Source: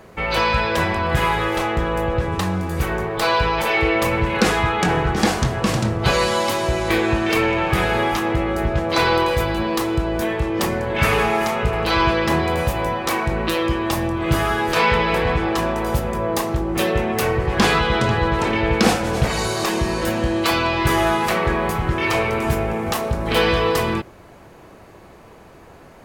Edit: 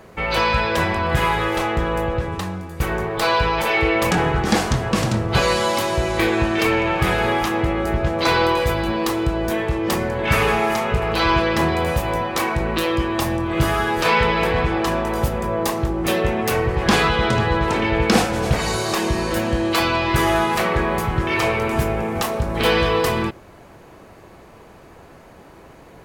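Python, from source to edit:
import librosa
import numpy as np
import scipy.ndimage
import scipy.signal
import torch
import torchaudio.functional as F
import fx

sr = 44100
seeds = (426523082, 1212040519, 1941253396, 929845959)

y = fx.edit(x, sr, fx.fade_out_to(start_s=1.96, length_s=0.84, floor_db=-11.5),
    fx.cut(start_s=4.11, length_s=0.71), tone=tone)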